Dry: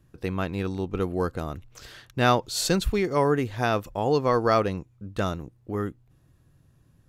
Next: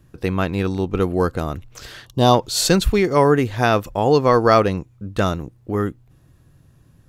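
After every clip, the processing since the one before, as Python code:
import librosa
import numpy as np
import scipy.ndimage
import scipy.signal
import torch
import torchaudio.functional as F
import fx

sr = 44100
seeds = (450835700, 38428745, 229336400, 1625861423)

y = fx.spec_box(x, sr, start_s=2.06, length_s=0.28, low_hz=1200.0, high_hz=2800.0, gain_db=-16)
y = y * 10.0 ** (7.5 / 20.0)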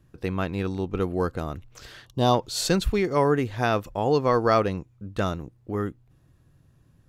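y = fx.high_shelf(x, sr, hz=7400.0, db=-4.0)
y = y * 10.0 ** (-6.5 / 20.0)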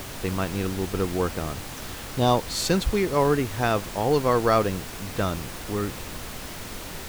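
y = fx.dmg_noise_colour(x, sr, seeds[0], colour='pink', level_db=-36.0)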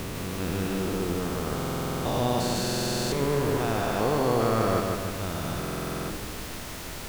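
y = fx.spec_steps(x, sr, hold_ms=400)
y = fx.echo_feedback(y, sr, ms=152, feedback_pct=56, wet_db=-4)
y = fx.buffer_glitch(y, sr, at_s=(1.54, 2.61, 5.59), block=2048, repeats=10)
y = y * 10.0 ** (-1.0 / 20.0)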